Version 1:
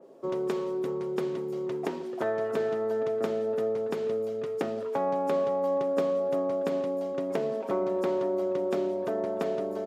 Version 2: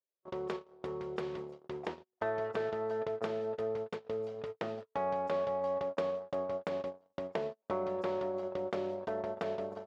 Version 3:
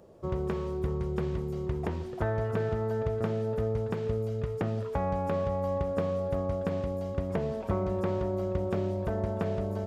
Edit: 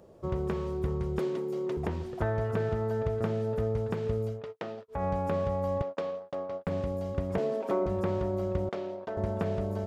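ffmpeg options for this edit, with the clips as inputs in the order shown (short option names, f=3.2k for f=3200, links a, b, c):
-filter_complex "[0:a]asplit=2[a][b];[1:a]asplit=3[c][d][e];[2:a]asplit=6[f][g][h][i][j][k];[f]atrim=end=1.192[l];[a]atrim=start=1.188:end=1.772[m];[g]atrim=start=1.768:end=4.44[n];[c]atrim=start=4.28:end=5.04[o];[h]atrim=start=4.88:end=5.822[p];[d]atrim=start=5.818:end=6.672[q];[i]atrim=start=6.668:end=7.382[r];[b]atrim=start=7.378:end=7.862[s];[j]atrim=start=7.858:end=8.692[t];[e]atrim=start=8.688:end=9.172[u];[k]atrim=start=9.168[v];[l][m]acrossfade=d=0.004:c1=hsin:c2=hsin[w];[w][n]acrossfade=d=0.004:c1=hsin:c2=hsin[x];[x][o]acrossfade=d=0.16:c1=tri:c2=tri[y];[y][p]acrossfade=d=0.16:c1=tri:c2=tri[z];[z][q]acrossfade=d=0.004:c1=hsin:c2=hsin[aa];[aa][r]acrossfade=d=0.004:c1=hsin:c2=hsin[ab];[ab][s]acrossfade=d=0.004:c1=hsin:c2=hsin[ac];[ac][t]acrossfade=d=0.004:c1=hsin:c2=hsin[ad];[ad][u]acrossfade=d=0.004:c1=hsin:c2=hsin[ae];[ae][v]acrossfade=d=0.004:c1=hsin:c2=hsin"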